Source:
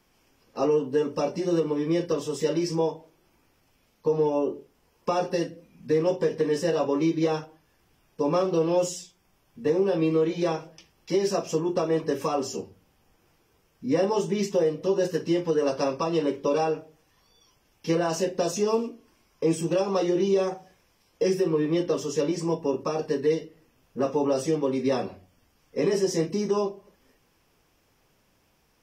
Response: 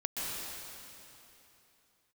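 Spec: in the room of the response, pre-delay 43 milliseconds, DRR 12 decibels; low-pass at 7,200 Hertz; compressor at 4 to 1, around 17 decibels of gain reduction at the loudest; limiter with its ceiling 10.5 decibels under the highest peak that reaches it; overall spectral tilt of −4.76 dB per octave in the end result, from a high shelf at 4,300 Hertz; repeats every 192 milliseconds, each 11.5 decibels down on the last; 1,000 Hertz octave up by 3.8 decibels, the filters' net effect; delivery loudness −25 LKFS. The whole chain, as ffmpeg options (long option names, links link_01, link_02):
-filter_complex "[0:a]lowpass=7200,equalizer=frequency=1000:width_type=o:gain=4.5,highshelf=frequency=4300:gain=8,acompressor=threshold=-40dB:ratio=4,alimiter=level_in=11dB:limit=-24dB:level=0:latency=1,volume=-11dB,aecho=1:1:192|384|576:0.266|0.0718|0.0194,asplit=2[link_01][link_02];[1:a]atrim=start_sample=2205,adelay=43[link_03];[link_02][link_03]afir=irnorm=-1:irlink=0,volume=-17dB[link_04];[link_01][link_04]amix=inputs=2:normalize=0,volume=19dB"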